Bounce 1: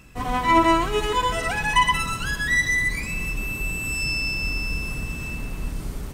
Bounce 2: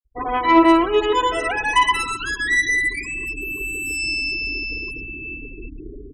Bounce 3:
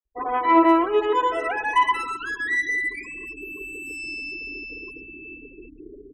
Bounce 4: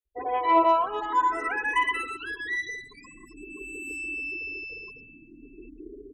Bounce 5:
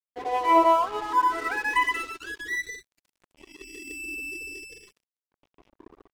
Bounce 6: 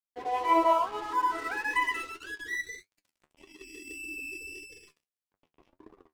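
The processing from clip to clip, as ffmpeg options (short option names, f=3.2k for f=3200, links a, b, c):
-af "afftfilt=real='re*gte(hypot(re,im),0.0398)':imag='im*gte(hypot(re,im),0.0398)':win_size=1024:overlap=0.75,lowshelf=f=250:t=q:w=3:g=-10,acontrast=32,volume=-2.5dB"
-filter_complex "[0:a]acrossover=split=270 2100:gain=0.178 1 0.224[a][b][c];[a][b][c]amix=inputs=3:normalize=0,volume=-1.5dB"
-filter_complex "[0:a]asplit=2[a][b];[b]afreqshift=0.48[c];[a][c]amix=inputs=2:normalize=1"
-af "aeval=exprs='sgn(val(0))*max(abs(val(0))-0.00891,0)':c=same,volume=2dB"
-af "flanger=delay=9.5:depth=4:regen=54:speed=1.7:shape=sinusoidal"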